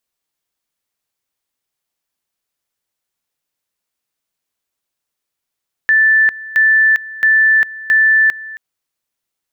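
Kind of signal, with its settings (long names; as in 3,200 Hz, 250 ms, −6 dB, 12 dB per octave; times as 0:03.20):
tone at two levels in turn 1,760 Hz −7.5 dBFS, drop 19 dB, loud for 0.40 s, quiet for 0.27 s, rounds 4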